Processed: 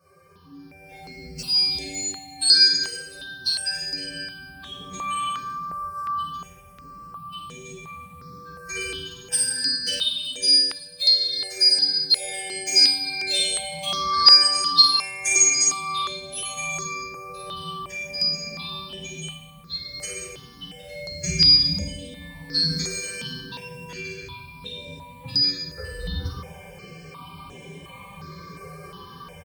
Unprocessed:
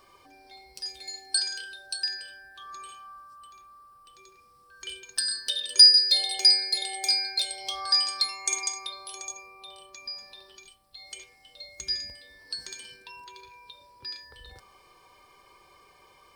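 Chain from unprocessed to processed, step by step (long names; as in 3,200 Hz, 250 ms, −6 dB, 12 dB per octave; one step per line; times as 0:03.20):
high-pass filter 64 Hz 6 dB per octave
parametric band 180 Hz +15 dB 2 octaves
pitch vibrato 2 Hz 7.3 cents
low-shelf EQ 93 Hz +6.5 dB
double-tracking delay 25 ms −7.5 dB
automatic gain control gain up to 14.5 dB
phase-vocoder stretch with locked phases 1.8×
convolution reverb RT60 1.0 s, pre-delay 3 ms, DRR −9 dB
step-sequenced phaser 2.8 Hz 900–4,600 Hz
level −8.5 dB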